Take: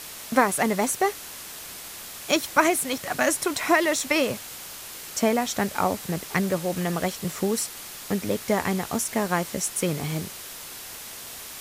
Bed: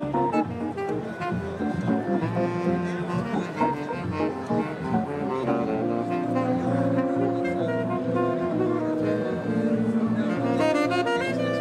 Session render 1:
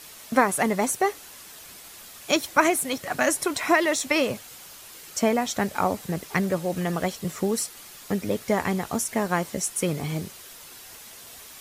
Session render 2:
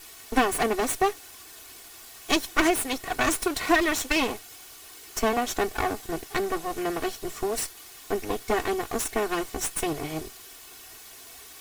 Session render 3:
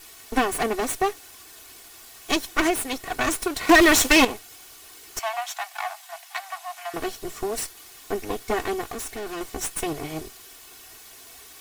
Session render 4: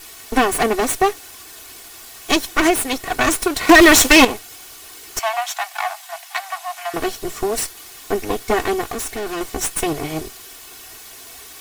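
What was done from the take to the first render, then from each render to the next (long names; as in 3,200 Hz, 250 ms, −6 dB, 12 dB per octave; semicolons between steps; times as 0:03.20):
broadband denoise 7 dB, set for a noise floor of −40 dBFS
lower of the sound and its delayed copy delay 2.7 ms
0:03.69–0:04.25: leveller curve on the samples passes 3; 0:05.19–0:06.94: Chebyshev high-pass with heavy ripple 660 Hz, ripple 3 dB; 0:08.92–0:09.41: hard clipping −30.5 dBFS
level +7 dB; brickwall limiter −3 dBFS, peak gain reduction 2.5 dB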